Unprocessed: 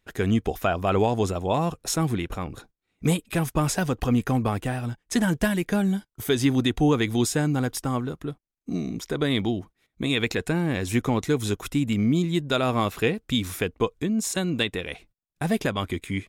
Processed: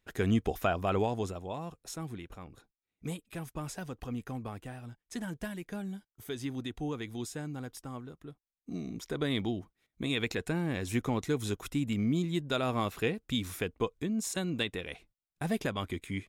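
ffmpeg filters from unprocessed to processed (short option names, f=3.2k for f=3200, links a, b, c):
-af "volume=3dB,afade=t=out:st=0.64:d=0.92:silence=0.298538,afade=t=in:st=8.23:d=0.9:silence=0.398107"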